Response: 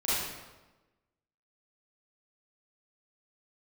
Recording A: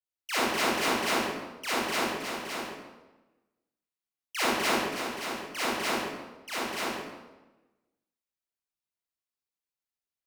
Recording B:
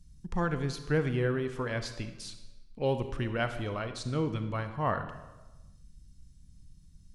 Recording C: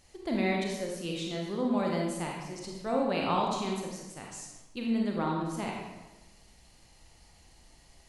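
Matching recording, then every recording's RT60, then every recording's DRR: A; 1.1, 1.1, 1.1 s; -11.0, 8.5, -1.5 dB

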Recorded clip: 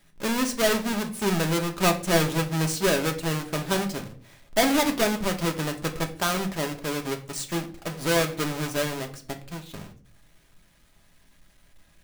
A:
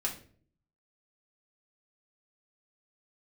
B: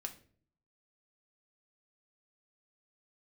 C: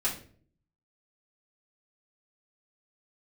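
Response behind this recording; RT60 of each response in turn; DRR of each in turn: B; 0.50, 0.50, 0.50 s; -3.0, 3.5, -8.5 dB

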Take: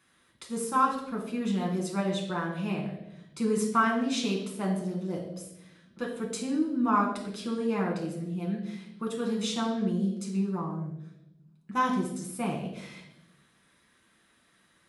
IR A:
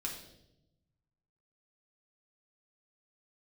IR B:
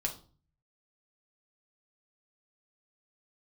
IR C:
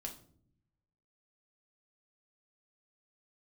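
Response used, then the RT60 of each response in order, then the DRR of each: A; 0.85 s, 0.40 s, not exponential; -1.5, 0.5, 1.0 dB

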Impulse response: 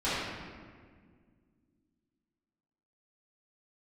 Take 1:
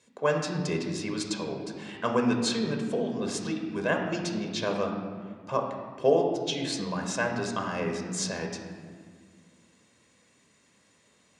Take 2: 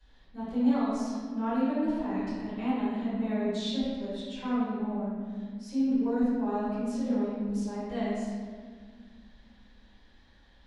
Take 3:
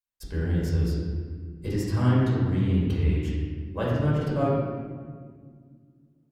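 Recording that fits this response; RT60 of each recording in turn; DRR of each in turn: 2; 1.9, 1.8, 1.8 s; 2.5, -14.5, -6.5 dB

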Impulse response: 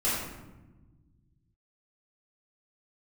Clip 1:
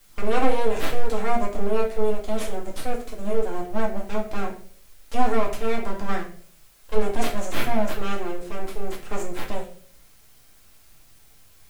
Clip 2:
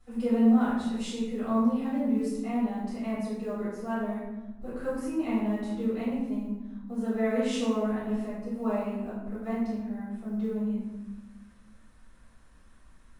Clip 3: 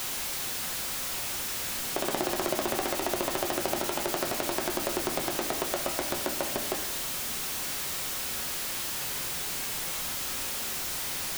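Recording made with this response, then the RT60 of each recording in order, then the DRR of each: 2; 0.50 s, 1.1 s, not exponential; -2.0, -10.5, 4.0 dB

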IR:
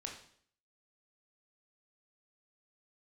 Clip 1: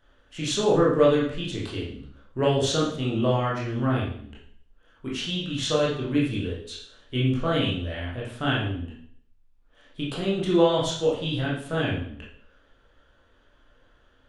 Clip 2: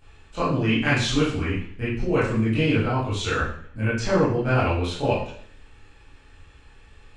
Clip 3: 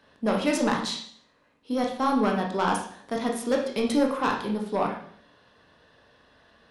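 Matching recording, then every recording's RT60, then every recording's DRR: 3; 0.60, 0.60, 0.60 s; -5.5, -11.5, 0.0 dB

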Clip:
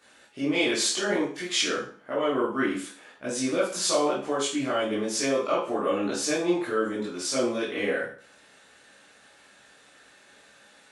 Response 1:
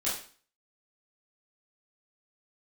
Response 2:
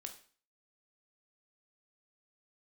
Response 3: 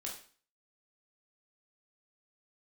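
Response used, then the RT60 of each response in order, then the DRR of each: 1; 0.40, 0.40, 0.40 s; -9.0, 5.0, -2.5 dB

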